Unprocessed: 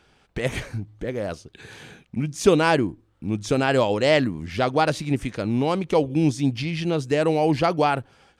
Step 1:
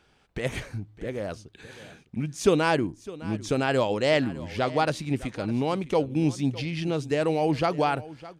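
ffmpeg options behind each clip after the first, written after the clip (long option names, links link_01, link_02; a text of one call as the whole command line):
ffmpeg -i in.wav -af "aecho=1:1:608:0.126,volume=-4dB" out.wav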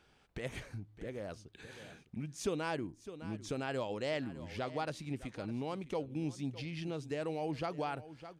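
ffmpeg -i in.wav -af "acompressor=threshold=-45dB:ratio=1.5,volume=-4.5dB" out.wav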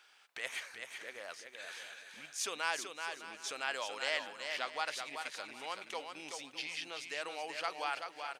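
ffmpeg -i in.wav -filter_complex "[0:a]highpass=1200,asplit=2[link_01][link_02];[link_02]aecho=0:1:381|762|1143:0.501|0.1|0.02[link_03];[link_01][link_03]amix=inputs=2:normalize=0,volume=7.5dB" out.wav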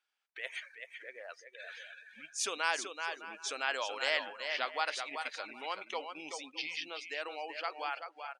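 ffmpeg -i in.wav -af "dynaudnorm=framelen=320:gausssize=11:maxgain=3.5dB,afftdn=noise_reduction=22:noise_floor=-46" out.wav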